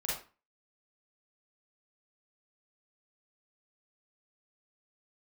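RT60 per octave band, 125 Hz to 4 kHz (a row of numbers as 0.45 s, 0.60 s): 0.35 s, 0.40 s, 0.30 s, 0.35 s, 0.30 s, 0.25 s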